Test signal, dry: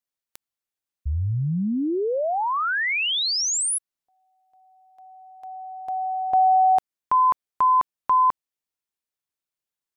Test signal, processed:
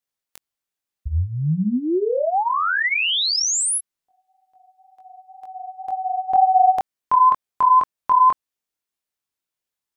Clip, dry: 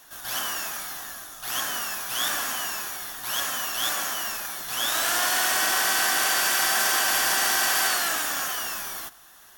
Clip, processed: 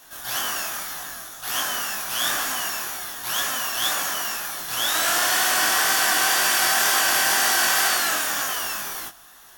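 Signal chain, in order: chorus 2 Hz, delay 19 ms, depth 5.7 ms; trim +6 dB

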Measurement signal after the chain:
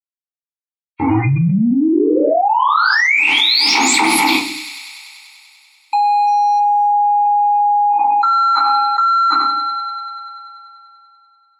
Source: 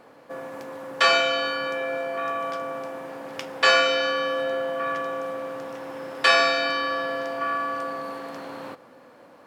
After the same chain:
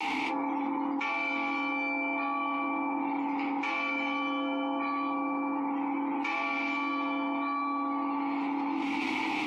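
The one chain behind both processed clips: median filter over 15 samples; high-pass 160 Hz 24 dB/octave; hum notches 50/100/150/200/250/300/350/400/450 Hz; word length cut 8-bit, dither none; spectral gate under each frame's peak -30 dB strong; treble shelf 6.7 kHz -9 dB; level rider gain up to 16.5 dB; vowel filter u; tilt shelf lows -8.5 dB, about 1.3 kHz; on a send: feedback echo behind a high-pass 97 ms, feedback 80%, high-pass 2.4 kHz, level -17.5 dB; on the sum: simulated room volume 350 m³, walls furnished, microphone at 4.5 m; level flattener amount 100%; trim -10 dB

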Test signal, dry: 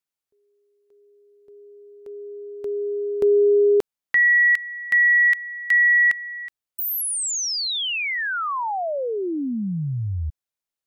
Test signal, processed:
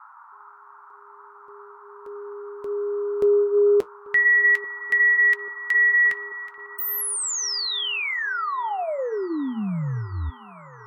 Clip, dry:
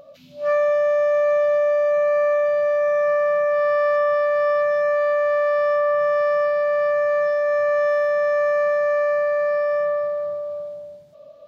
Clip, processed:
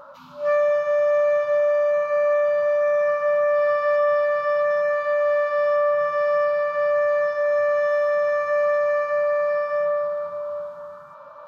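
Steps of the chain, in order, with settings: band noise 880–1400 Hz -46 dBFS; flange 0.19 Hz, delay 3.6 ms, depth 7.3 ms, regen -66%; feedback echo behind a low-pass 839 ms, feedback 70%, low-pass 2.6 kHz, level -22.5 dB; trim +3 dB

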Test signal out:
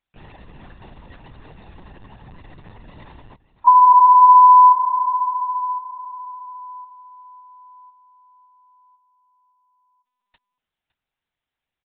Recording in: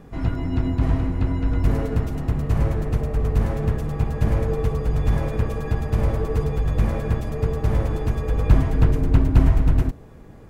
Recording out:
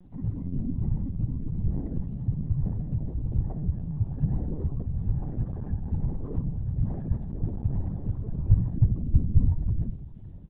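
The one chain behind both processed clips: resonances exaggerated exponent 2; high-pass 77 Hz 12 dB/octave; peaking EQ 110 Hz -4 dB 0.84 oct; comb 1.1 ms, depth 60%; word length cut 12-bit, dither triangular; delay 560 ms -16.5 dB; LPC vocoder at 8 kHz pitch kept; upward expansion 1.5:1, over -22 dBFS

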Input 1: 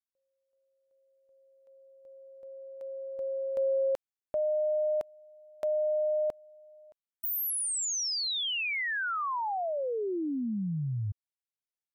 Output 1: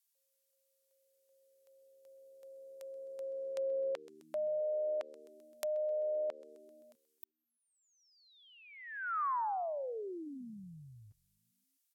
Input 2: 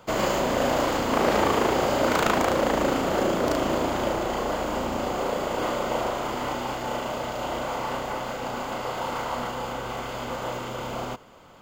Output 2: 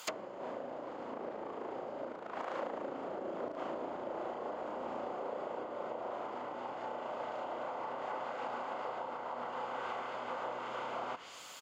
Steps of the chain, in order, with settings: differentiator; compression 16:1, threshold -41 dBFS; frequency-shifting echo 130 ms, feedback 62%, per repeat -75 Hz, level -21 dB; low-pass that closes with the level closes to 460 Hz, closed at -41 dBFS; high-pass 110 Hz 6 dB/octave; trim +15 dB

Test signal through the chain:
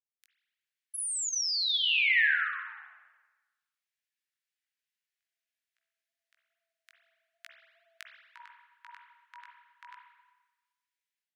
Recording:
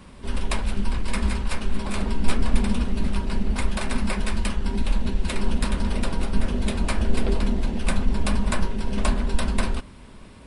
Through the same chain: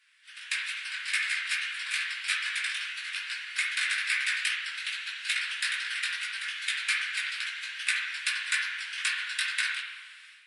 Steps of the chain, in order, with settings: steep high-pass 1.6 kHz 48 dB/octave; tilt EQ -3 dB/octave; level rider gain up to 15 dB; chorus 2.4 Hz, delay 16.5 ms, depth 4.2 ms; spring tank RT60 1.2 s, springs 42/56 ms, chirp 35 ms, DRR 2 dB; trim -2 dB

